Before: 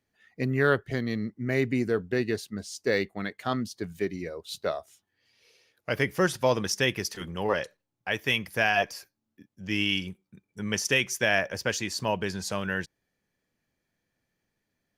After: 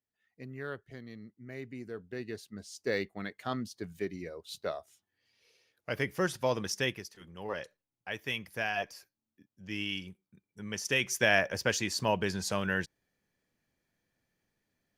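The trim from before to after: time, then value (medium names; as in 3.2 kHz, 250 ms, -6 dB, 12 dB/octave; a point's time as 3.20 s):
1.73 s -17 dB
2.89 s -6 dB
6.88 s -6 dB
7.12 s -17 dB
7.61 s -9 dB
10.74 s -9 dB
11.16 s -1 dB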